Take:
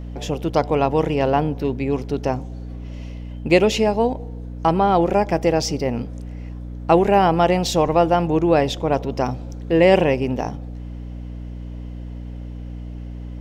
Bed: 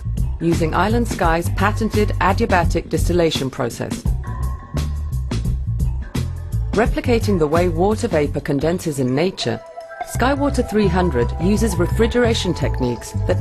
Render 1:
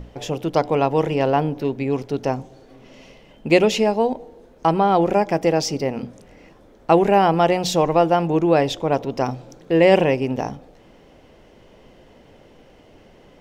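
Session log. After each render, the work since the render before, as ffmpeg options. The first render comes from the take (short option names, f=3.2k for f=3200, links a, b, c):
-af "bandreject=f=60:t=h:w=6,bandreject=f=120:t=h:w=6,bandreject=f=180:t=h:w=6,bandreject=f=240:t=h:w=6,bandreject=f=300:t=h:w=6"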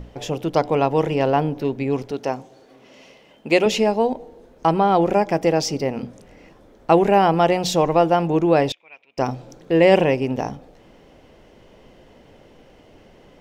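-filter_complex "[0:a]asettb=1/sr,asplit=3[a][b][c];[a]atrim=end=2.114[d];[b]atrim=start=2.11:end=3.66,asetpts=PTS-STARTPTS,afade=t=in:d=0.004:c=qsin,afade=t=out:st=1.546:d=0.004:c=qsin,highpass=f=340:p=1[e];[c]atrim=start=3.656[f];[d][e]acrossfade=d=0.004:c1=hsin:c2=qsin[g];[g][f]acrossfade=d=0.004:c1=qsin:c2=hsin,asettb=1/sr,asplit=3[h][i][j];[h]atrim=end=8.724[k];[i]atrim=start=8.72:end=9.18,asetpts=PTS-STARTPTS,afade=t=in:d=0.004:c=qsin,afade=t=out:st=0.456:d=0.004:c=qsin,bandpass=f=2.4k:t=q:w=12[l];[j]atrim=start=9.176[m];[k][l]acrossfade=d=0.004:c1=hsin:c2=qsin[n];[n][m]acrossfade=d=0.004:c1=qsin:c2=hsin"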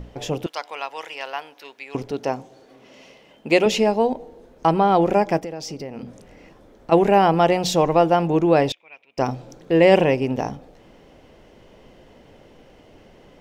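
-filter_complex "[0:a]asettb=1/sr,asplit=3[a][b][c];[a]atrim=end=0.464[d];[b]atrim=start=0.46:end=1.95,asetpts=PTS-STARTPTS,afade=t=in:d=0.004:c=qsin,afade=t=out:st=1.486:d=0.004:c=qsin,highpass=1.4k[e];[c]atrim=start=1.946[f];[d][e]acrossfade=d=0.004:c1=hsin:c2=qsin[g];[g][f]acrossfade=d=0.004:c1=qsin:c2=hsin,asplit=3[h][i][j];[h]afade=t=out:st=5.39:d=0.02[k];[i]acompressor=threshold=-29dB:ratio=5:attack=3.2:release=140:knee=1:detection=peak,afade=t=in:st=5.39:d=0.02,afade=t=out:st=6.91:d=0.02[l];[j]afade=t=in:st=6.91:d=0.02[m];[k][l][m]amix=inputs=3:normalize=0"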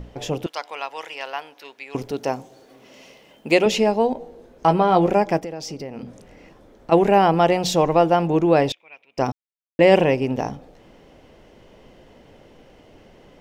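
-filter_complex "[0:a]asettb=1/sr,asplit=3[a][b][c];[a]atrim=end=1.954[d];[b]atrim=start=1.95:end=3.55,asetpts=PTS-STARTPTS,afade=t=in:d=0.004:c=qsin,afade=t=out:st=1.596:d=0.004:c=qsin,highshelf=f=8.6k:g=11[e];[c]atrim=start=3.546[f];[d][e]acrossfade=d=0.004:c1=hsin:c2=qsin[g];[g][f]acrossfade=d=0.004:c1=qsin:c2=hsin,asettb=1/sr,asplit=3[h][i][j];[h]atrim=end=4.144[k];[i]atrim=start=4.14:end=5.09,asetpts=PTS-STARTPTS,afade=t=in:d=0.004:c=qsin,afade=t=out:st=0.946:d=0.004:c=qsin,asplit=2[l][m];[m]adelay=17,volume=-7dB[n];[l][n]amix=inputs=2:normalize=0,atrim=end_sample=41895[o];[j]atrim=start=5.086[p];[k][o]acrossfade=d=0.004:c1=hsin:c2=qsin[q];[q][p]acrossfade=d=0.004:c1=qsin:c2=hsin,asplit=3[r][s][t];[r]atrim=end=9.32,asetpts=PTS-STARTPTS,afade=t=out:st=9.316:d=0.004:c=hsin[u];[s]atrim=start=9.32:end=9.79,asetpts=PTS-STARTPTS,volume=0[v];[t]atrim=start=9.79,asetpts=PTS-STARTPTS,afade=t=in:d=0.004:c=hsin[w];[u][v][w]concat=n=3:v=0:a=1"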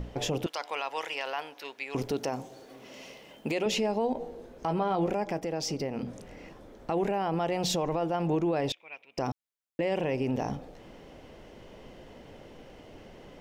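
-af "acompressor=threshold=-21dB:ratio=10,alimiter=limit=-20.5dB:level=0:latency=1:release=20"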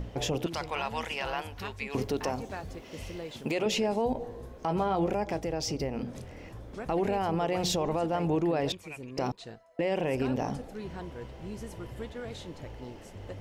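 -filter_complex "[1:a]volume=-24dB[a];[0:a][a]amix=inputs=2:normalize=0"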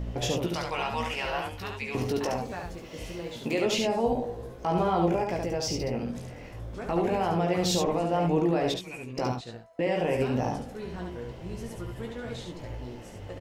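-filter_complex "[0:a]asplit=2[a][b];[b]adelay=17,volume=-5.5dB[c];[a][c]amix=inputs=2:normalize=0,asplit=2[d][e];[e]aecho=0:1:71:0.631[f];[d][f]amix=inputs=2:normalize=0"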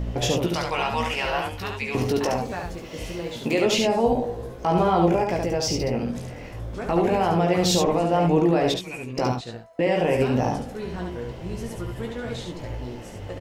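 -af "volume=5.5dB"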